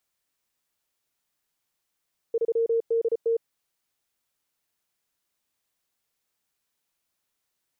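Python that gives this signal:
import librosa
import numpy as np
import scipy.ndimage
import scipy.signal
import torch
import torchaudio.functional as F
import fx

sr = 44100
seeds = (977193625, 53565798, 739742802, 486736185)

y = fx.morse(sr, text='3DT', wpm=34, hz=459.0, level_db=-20.0)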